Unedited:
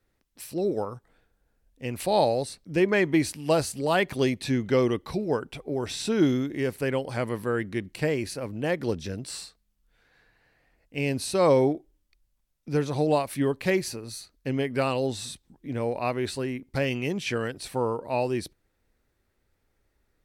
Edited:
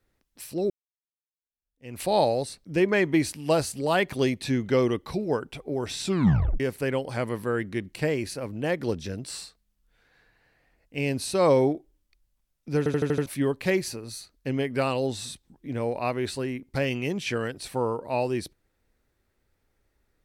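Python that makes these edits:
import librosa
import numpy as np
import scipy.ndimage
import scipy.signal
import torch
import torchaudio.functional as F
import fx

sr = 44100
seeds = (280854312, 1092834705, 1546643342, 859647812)

y = fx.edit(x, sr, fx.fade_in_span(start_s=0.7, length_s=1.3, curve='exp'),
    fx.tape_stop(start_s=6.04, length_s=0.56),
    fx.stutter_over(start_s=12.78, slice_s=0.08, count=6), tone=tone)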